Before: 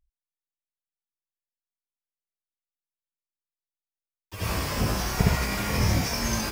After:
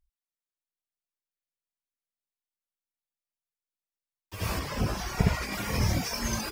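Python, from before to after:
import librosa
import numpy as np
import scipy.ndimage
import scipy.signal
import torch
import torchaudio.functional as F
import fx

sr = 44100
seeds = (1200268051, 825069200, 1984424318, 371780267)

y = fx.dereverb_blind(x, sr, rt60_s=0.93)
y = fx.high_shelf(y, sr, hz=fx.line((4.58, 5400.0), (5.52, 10000.0)), db=-7.5, at=(4.58, 5.52), fade=0.02)
y = y * 10.0 ** (-1.5 / 20.0)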